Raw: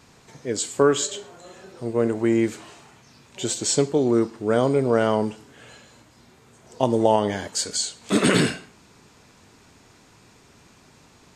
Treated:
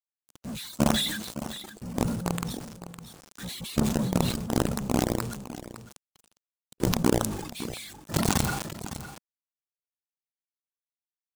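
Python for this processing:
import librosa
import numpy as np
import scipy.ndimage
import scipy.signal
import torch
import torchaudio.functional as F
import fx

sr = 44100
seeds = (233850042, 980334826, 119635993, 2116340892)

p1 = fx.pitch_heads(x, sr, semitones=-11.5)
p2 = fx.quant_companded(p1, sr, bits=2)
p3 = fx.peak_eq(p2, sr, hz=210.0, db=4.0, octaves=1.3)
p4 = p3 + fx.echo_single(p3, sr, ms=558, db=-12.0, dry=0)
p5 = fx.dereverb_blind(p4, sr, rt60_s=1.5)
p6 = fx.graphic_eq(p5, sr, hz=(2000, 4000, 8000), db=(-6, -3, 5))
p7 = 10.0 ** (-25.0 / 20.0) * (np.abs((p6 / 10.0 ** (-25.0 / 20.0) + 3.0) % 4.0 - 2.0) - 1.0)
p8 = p6 + (p7 * librosa.db_to_amplitude(-10.0))
p9 = fx.sustainer(p8, sr, db_per_s=45.0)
y = p9 * librosa.db_to_amplitude(-13.0)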